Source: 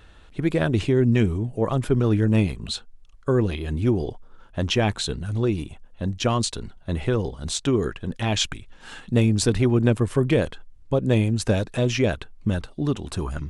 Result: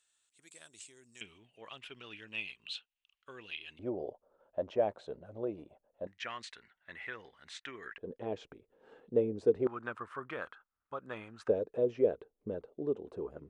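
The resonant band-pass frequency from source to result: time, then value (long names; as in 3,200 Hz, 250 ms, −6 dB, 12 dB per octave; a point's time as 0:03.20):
resonant band-pass, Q 4.9
7,900 Hz
from 0:01.21 2,800 Hz
from 0:03.79 580 Hz
from 0:06.07 1,900 Hz
from 0:07.98 460 Hz
from 0:09.67 1,300 Hz
from 0:11.48 460 Hz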